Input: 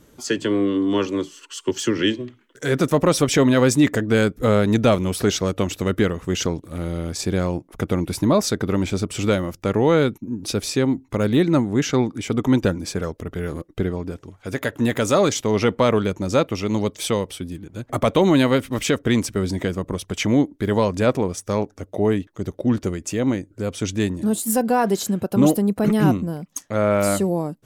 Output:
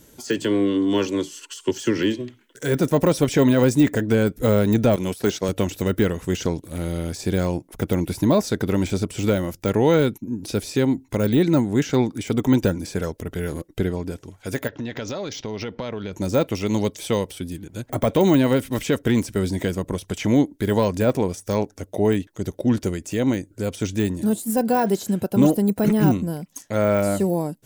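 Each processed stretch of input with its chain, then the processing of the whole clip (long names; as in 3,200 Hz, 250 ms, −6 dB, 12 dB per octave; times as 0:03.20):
0:04.96–0:05.49: noise gate −26 dBFS, range −11 dB + high-pass filter 61 Hz + low-shelf EQ 110 Hz −10 dB
0:14.67–0:16.13: Butterworth low-pass 5,800 Hz 48 dB per octave + downward compressor 8 to 1, threshold −26 dBFS
whole clip: notch filter 1,200 Hz, Q 6.7; de-essing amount 90%; high-shelf EQ 4,900 Hz +10 dB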